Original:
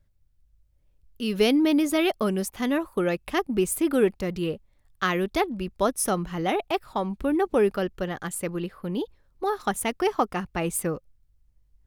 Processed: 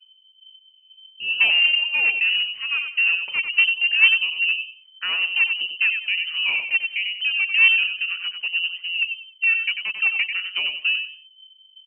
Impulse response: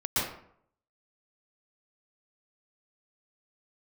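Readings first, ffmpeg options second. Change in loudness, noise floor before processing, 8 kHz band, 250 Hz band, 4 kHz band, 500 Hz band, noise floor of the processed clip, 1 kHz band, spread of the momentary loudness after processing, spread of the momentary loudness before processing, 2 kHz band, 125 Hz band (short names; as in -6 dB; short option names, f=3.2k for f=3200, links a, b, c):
+7.0 dB, -65 dBFS, under -40 dB, under -30 dB, +16.0 dB, under -25 dB, -55 dBFS, -14.0 dB, 10 LU, 10 LU, +16.5 dB, under -25 dB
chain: -filter_complex "[0:a]afftfilt=real='re*pow(10,9/40*sin(2*PI*(0.55*log(max(b,1)*sr/1024/100)/log(2)-(2.2)*(pts-256)/sr)))':imag='im*pow(10,9/40*sin(2*PI*(0.55*log(max(b,1)*sr/1024/100)/log(2)-(2.2)*(pts-256)/sr)))':win_size=1024:overlap=0.75,firequalizer=gain_entry='entry(120,0);entry(240,-12);entry(380,-2);entry(950,-14);entry(1500,-17)':delay=0.05:min_phase=1,asplit=2[a][b];[b]aecho=0:1:94|188|282:0.447|0.107|0.0257[c];[a][c]amix=inputs=2:normalize=0,aeval=exprs='clip(val(0),-1,0.0631)':c=same,lowpass=f=2.6k:t=q:w=0.5098,lowpass=f=2.6k:t=q:w=0.6013,lowpass=f=2.6k:t=q:w=0.9,lowpass=f=2.6k:t=q:w=2.563,afreqshift=-3100,volume=8dB"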